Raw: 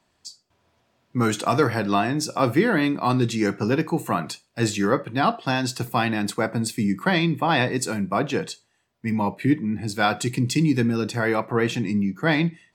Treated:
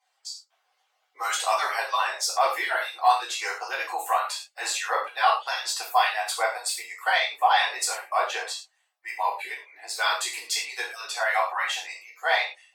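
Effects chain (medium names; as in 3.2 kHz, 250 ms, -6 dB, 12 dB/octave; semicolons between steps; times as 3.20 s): harmonic-percussive separation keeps percussive; steep high-pass 600 Hz 36 dB/octave; gated-style reverb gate 140 ms falling, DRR -5.5 dB; trim -3.5 dB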